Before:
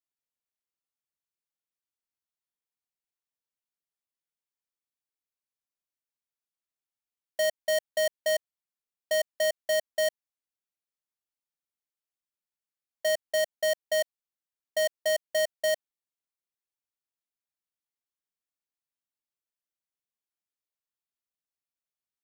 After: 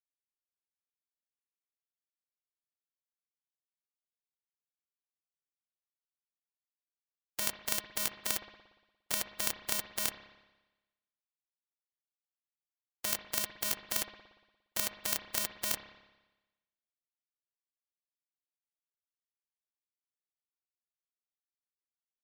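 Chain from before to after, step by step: spectral contrast lowered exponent 0.12; gate -51 dBFS, range -19 dB; spring tank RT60 1.1 s, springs 58 ms, chirp 30 ms, DRR 10 dB; gain -6 dB

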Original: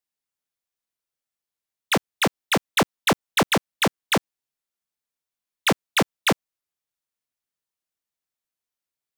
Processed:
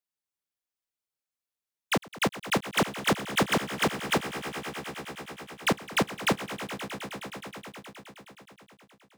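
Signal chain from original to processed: formant shift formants -2 st; swelling echo 0.105 s, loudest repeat 5, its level -16 dB; gain -5 dB

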